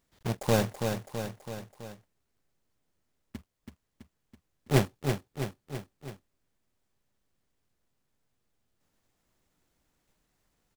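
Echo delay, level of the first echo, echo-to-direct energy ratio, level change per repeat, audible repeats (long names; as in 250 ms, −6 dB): 329 ms, −6.0 dB, −4.0 dB, −4.5 dB, 4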